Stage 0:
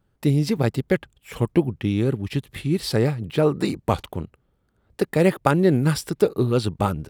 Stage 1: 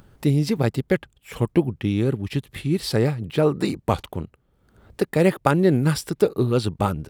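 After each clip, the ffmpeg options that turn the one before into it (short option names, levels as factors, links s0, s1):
-af "acompressor=mode=upward:threshold=0.0126:ratio=2.5"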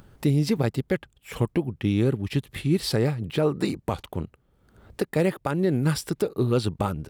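-af "alimiter=limit=0.237:level=0:latency=1:release=331"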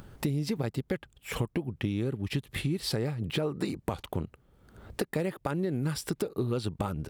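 -af "acompressor=threshold=0.0316:ratio=6,volume=1.33"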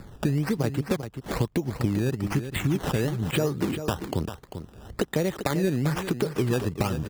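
-filter_complex "[0:a]acrossover=split=320[s0][s1];[s1]acrusher=samples=14:mix=1:aa=0.000001:lfo=1:lforange=14:lforate=1.1[s2];[s0][s2]amix=inputs=2:normalize=0,aecho=1:1:394:0.335,volume=1.78"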